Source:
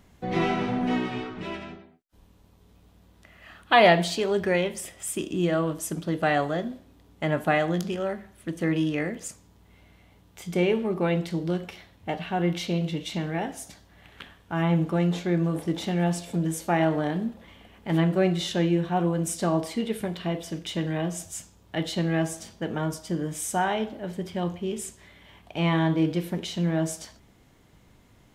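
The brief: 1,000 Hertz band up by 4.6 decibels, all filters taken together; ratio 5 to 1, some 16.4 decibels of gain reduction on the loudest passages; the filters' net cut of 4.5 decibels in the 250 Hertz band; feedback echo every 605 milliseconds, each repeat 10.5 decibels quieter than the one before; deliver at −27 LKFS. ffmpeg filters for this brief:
ffmpeg -i in.wav -af "equalizer=frequency=250:width_type=o:gain=-8.5,equalizer=frequency=1000:width_type=o:gain=7.5,acompressor=threshold=-29dB:ratio=5,aecho=1:1:605|1210|1815:0.299|0.0896|0.0269,volume=7dB" out.wav

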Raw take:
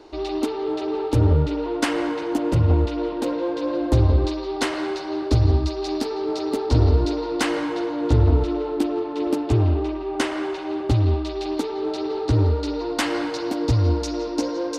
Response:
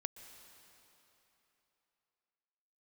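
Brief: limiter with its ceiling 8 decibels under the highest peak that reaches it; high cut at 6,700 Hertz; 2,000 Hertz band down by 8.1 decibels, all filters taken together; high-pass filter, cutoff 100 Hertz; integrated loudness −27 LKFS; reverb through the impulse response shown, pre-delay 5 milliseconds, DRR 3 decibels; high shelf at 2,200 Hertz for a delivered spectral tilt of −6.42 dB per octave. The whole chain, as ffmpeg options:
-filter_complex "[0:a]highpass=100,lowpass=6700,equalizer=frequency=2000:width_type=o:gain=-8,highshelf=frequency=2200:gain=-5.5,alimiter=limit=-16.5dB:level=0:latency=1,asplit=2[link_01][link_02];[1:a]atrim=start_sample=2205,adelay=5[link_03];[link_02][link_03]afir=irnorm=-1:irlink=0,volume=-1dB[link_04];[link_01][link_04]amix=inputs=2:normalize=0,volume=-0.5dB"

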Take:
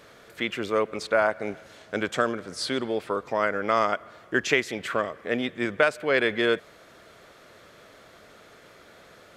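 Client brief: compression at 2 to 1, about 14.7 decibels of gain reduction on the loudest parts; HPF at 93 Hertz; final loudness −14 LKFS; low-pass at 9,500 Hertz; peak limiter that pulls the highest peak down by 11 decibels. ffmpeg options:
ffmpeg -i in.wav -af "highpass=93,lowpass=9500,acompressor=threshold=-45dB:ratio=2,volume=29.5dB,alimiter=limit=-0.5dB:level=0:latency=1" out.wav

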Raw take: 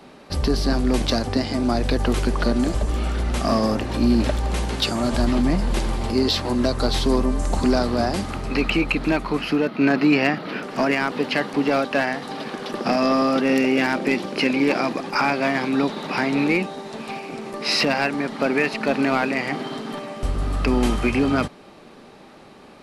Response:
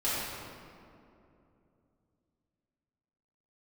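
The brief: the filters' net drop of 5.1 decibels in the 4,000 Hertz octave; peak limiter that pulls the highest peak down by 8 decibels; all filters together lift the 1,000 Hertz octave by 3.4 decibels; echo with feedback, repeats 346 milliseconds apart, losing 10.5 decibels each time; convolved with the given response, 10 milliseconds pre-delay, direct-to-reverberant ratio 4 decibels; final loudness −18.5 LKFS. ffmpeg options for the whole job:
-filter_complex "[0:a]equalizer=frequency=1000:width_type=o:gain=5,equalizer=frequency=4000:width_type=o:gain=-7,alimiter=limit=-14.5dB:level=0:latency=1,aecho=1:1:346|692|1038:0.299|0.0896|0.0269,asplit=2[link_01][link_02];[1:a]atrim=start_sample=2205,adelay=10[link_03];[link_02][link_03]afir=irnorm=-1:irlink=0,volume=-13.5dB[link_04];[link_01][link_04]amix=inputs=2:normalize=0,volume=4.5dB"

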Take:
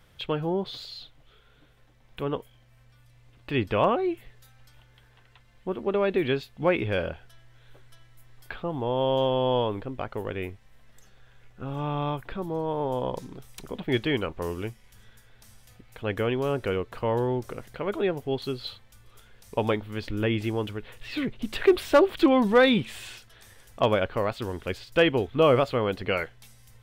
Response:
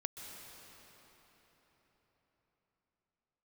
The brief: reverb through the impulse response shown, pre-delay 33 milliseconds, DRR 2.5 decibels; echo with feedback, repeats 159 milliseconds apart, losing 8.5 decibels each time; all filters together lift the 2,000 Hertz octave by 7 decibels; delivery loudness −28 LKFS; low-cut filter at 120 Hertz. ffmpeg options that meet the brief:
-filter_complex "[0:a]highpass=120,equalizer=frequency=2000:width_type=o:gain=9,aecho=1:1:159|318|477|636:0.376|0.143|0.0543|0.0206,asplit=2[link_01][link_02];[1:a]atrim=start_sample=2205,adelay=33[link_03];[link_02][link_03]afir=irnorm=-1:irlink=0,volume=-2dB[link_04];[link_01][link_04]amix=inputs=2:normalize=0,volume=-4.5dB"

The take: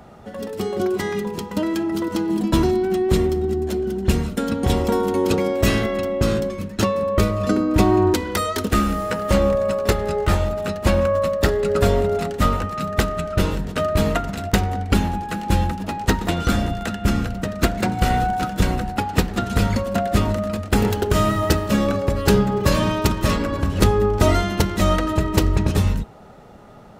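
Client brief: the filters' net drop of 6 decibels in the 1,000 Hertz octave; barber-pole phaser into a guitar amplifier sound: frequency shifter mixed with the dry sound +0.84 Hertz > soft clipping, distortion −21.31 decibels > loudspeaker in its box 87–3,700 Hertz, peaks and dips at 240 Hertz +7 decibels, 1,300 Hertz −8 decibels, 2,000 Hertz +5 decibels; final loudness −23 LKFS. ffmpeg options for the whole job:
ffmpeg -i in.wav -filter_complex "[0:a]equalizer=frequency=1000:width_type=o:gain=-6,asplit=2[link_01][link_02];[link_02]afreqshift=0.84[link_03];[link_01][link_03]amix=inputs=2:normalize=1,asoftclip=threshold=-10.5dB,highpass=87,equalizer=frequency=240:width_type=q:width=4:gain=7,equalizer=frequency=1300:width_type=q:width=4:gain=-8,equalizer=frequency=2000:width_type=q:width=4:gain=5,lowpass=frequency=3700:width=0.5412,lowpass=frequency=3700:width=1.3066,volume=2dB" out.wav

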